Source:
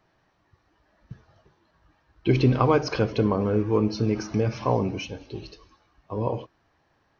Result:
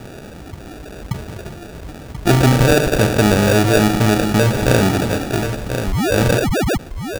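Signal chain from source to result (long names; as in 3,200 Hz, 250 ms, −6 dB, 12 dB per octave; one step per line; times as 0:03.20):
in parallel at −11.5 dB: wrap-around overflow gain 18.5 dB
on the sum: sound drawn into the spectrogram rise, 0:05.87–0:06.78, 980–5,300 Hz −30 dBFS
decimation without filtering 42×
on a send: single-tap delay 1,035 ms −16 dB
on the sum: envelope flattener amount 50%
level +6 dB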